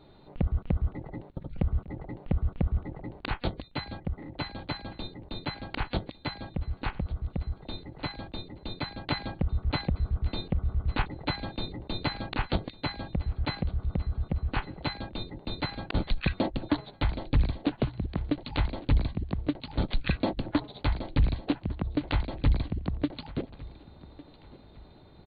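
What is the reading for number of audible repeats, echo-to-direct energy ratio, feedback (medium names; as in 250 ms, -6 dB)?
2, -19.5 dB, 36%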